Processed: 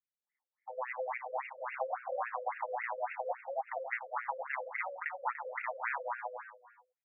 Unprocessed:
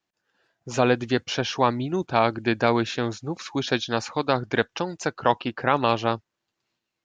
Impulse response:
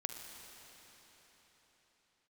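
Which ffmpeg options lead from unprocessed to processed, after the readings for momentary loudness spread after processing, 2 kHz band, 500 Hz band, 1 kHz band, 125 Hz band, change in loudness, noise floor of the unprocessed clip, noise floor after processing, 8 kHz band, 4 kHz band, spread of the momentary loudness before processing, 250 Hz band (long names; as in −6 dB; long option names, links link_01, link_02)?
5 LU, −9.5 dB, −15.0 dB, −11.0 dB, below −40 dB, −14.0 dB, −83 dBFS, below −85 dBFS, can't be measured, below −35 dB, 7 LU, below −40 dB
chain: -filter_complex "[0:a]bandreject=frequency=2300:width=6.7,afwtdn=0.0224,equalizer=frequency=125:width_type=o:width=1:gain=-6,equalizer=frequency=250:width_type=o:width=1:gain=-8,equalizer=frequency=1000:width_type=o:width=1:gain=-7,equalizer=frequency=2000:width_type=o:width=1:gain=4,alimiter=limit=-15dB:level=0:latency=1:release=324,acrossover=split=170[link_01][link_02];[link_02]acompressor=threshold=-30dB:ratio=6[link_03];[link_01][link_03]amix=inputs=2:normalize=0,afreqshift=390,aecho=1:1:212.8|291.5:0.891|0.316,asplit=2[link_04][link_05];[1:a]atrim=start_sample=2205,afade=type=out:start_time=0.39:duration=0.01,atrim=end_sample=17640,adelay=127[link_06];[link_05][link_06]afir=irnorm=-1:irlink=0,volume=-8.5dB[link_07];[link_04][link_07]amix=inputs=2:normalize=0,afftfilt=real='re*between(b*sr/1024,410*pow(2000/410,0.5+0.5*sin(2*PI*3.6*pts/sr))/1.41,410*pow(2000/410,0.5+0.5*sin(2*PI*3.6*pts/sr))*1.41)':imag='im*between(b*sr/1024,410*pow(2000/410,0.5+0.5*sin(2*PI*3.6*pts/sr))/1.41,410*pow(2000/410,0.5+0.5*sin(2*PI*3.6*pts/sr))*1.41)':win_size=1024:overlap=0.75"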